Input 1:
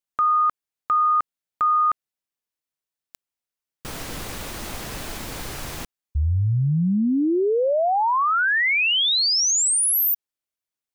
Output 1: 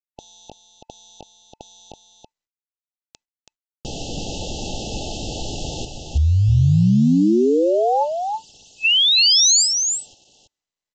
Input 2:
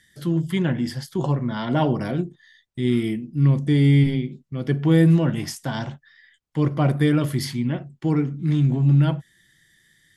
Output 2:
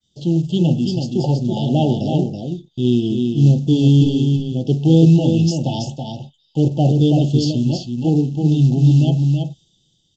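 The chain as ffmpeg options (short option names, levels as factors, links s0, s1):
-af "acrusher=bits=7:mode=log:mix=0:aa=0.000001,adynamicequalizer=threshold=0.0224:dfrequency=670:dqfactor=0.77:tfrequency=670:tqfactor=0.77:attack=5:release=100:ratio=0.4:range=2:mode=cutabove:tftype=bell,afftfilt=real='re*(1-between(b*sr/4096,890,2600))':imag='im*(1-between(b*sr/4096,890,2600))':win_size=4096:overlap=0.75,agate=range=0.0224:threshold=0.00158:ratio=3:release=413:detection=peak,aecho=1:1:328:0.562,volume=1.78" -ar 16000 -c:a sbc -b:a 192k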